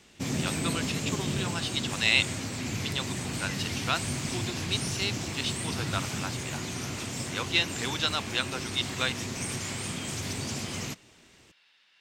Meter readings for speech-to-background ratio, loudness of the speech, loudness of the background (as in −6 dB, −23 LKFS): 2.0 dB, −31.0 LKFS, −33.0 LKFS